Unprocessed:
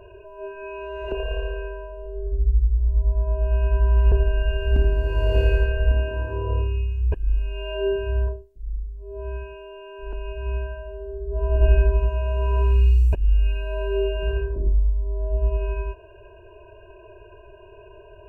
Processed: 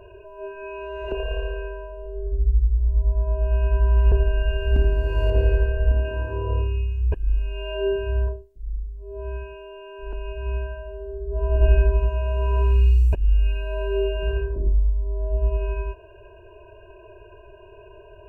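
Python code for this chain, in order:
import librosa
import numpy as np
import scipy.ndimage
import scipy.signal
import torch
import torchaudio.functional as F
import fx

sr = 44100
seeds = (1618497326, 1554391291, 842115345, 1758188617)

y = fx.high_shelf(x, sr, hz=2300.0, db=-12.0, at=(5.3, 6.05))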